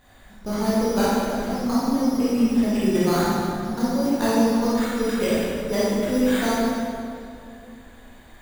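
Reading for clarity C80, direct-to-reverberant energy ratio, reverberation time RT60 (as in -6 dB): -2.0 dB, -9.5 dB, 2.5 s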